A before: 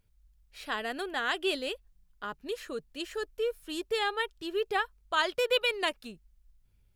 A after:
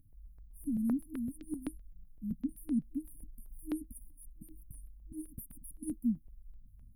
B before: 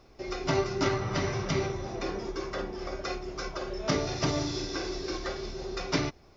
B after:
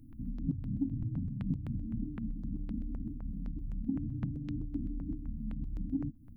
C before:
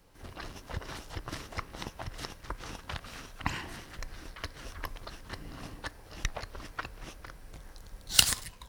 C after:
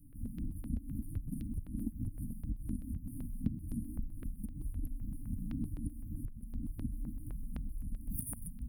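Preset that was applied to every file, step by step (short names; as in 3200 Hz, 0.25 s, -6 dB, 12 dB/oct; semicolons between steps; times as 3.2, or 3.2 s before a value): low shelf 180 Hz +7.5 dB; FFT band-reject 320–9000 Hz; compressor 6:1, threshold -38 dBFS; small resonant body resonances 230/820 Hz, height 12 dB, ringing for 45 ms; step phaser 7.8 Hz 200–6500 Hz; gain +4 dB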